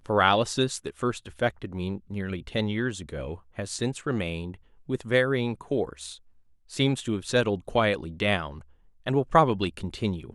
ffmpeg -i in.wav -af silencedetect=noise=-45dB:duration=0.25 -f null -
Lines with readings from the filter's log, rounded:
silence_start: 4.56
silence_end: 4.89 | silence_duration: 0.33
silence_start: 6.17
silence_end: 6.70 | silence_duration: 0.53
silence_start: 8.62
silence_end: 9.06 | silence_duration: 0.44